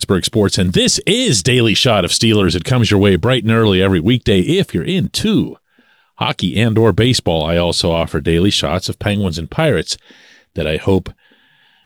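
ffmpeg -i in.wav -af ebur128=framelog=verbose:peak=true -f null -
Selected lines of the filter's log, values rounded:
Integrated loudness:
  I:         -14.3 LUFS
  Threshold: -24.7 LUFS
Loudness range:
  LRA:         4.6 LU
  Threshold: -34.6 LUFS
  LRA low:   -17.1 LUFS
  LRA high:  -12.5 LUFS
True peak:
  Peak:       -2.3 dBFS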